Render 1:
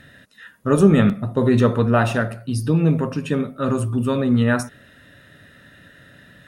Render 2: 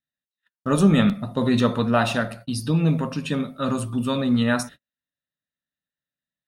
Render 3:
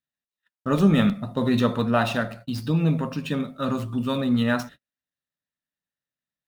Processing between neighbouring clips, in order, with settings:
noise gate −36 dBFS, range −46 dB; graphic EQ with 15 bands 100 Hz −10 dB, 400 Hz −8 dB, 1,600 Hz −3 dB, 4,000 Hz +7 dB
running median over 5 samples; level −1.5 dB

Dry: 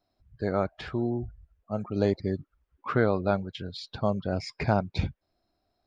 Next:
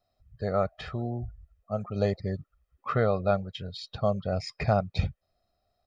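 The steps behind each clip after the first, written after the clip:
comb filter 1.6 ms, depth 66%
level −2 dB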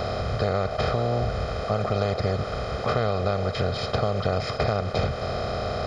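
compressor on every frequency bin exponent 0.2
downward compressor, threshold −20 dBFS, peak gain reduction 7.5 dB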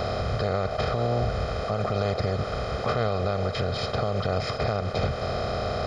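brickwall limiter −15.5 dBFS, peak gain reduction 5 dB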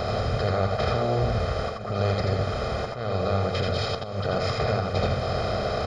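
volume swells 333 ms
on a send: multi-tap delay 81/90/304 ms −4/−8.5/−19.5 dB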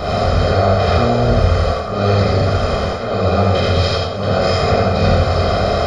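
reverb whose tail is shaped and stops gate 150 ms flat, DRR −7 dB
level +2.5 dB

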